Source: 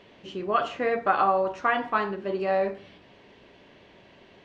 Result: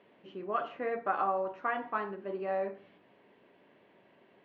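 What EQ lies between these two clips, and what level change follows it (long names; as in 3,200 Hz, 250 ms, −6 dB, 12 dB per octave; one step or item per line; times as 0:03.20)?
band-pass filter 170–2,200 Hz
−8.0 dB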